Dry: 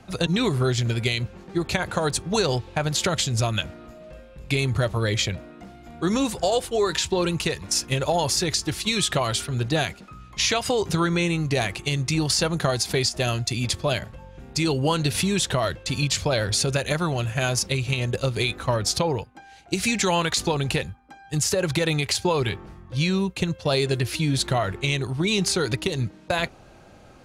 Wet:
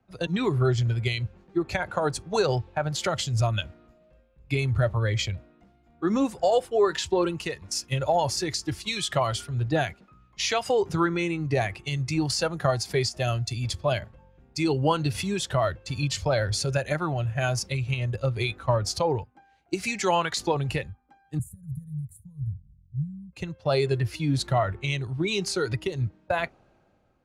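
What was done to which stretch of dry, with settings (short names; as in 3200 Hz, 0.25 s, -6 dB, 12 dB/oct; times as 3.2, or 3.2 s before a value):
21.39–23.33 inverse Chebyshev band-stop 330–5400 Hz
whole clip: spectral noise reduction 7 dB; high shelf 3800 Hz -11 dB; three-band expander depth 40%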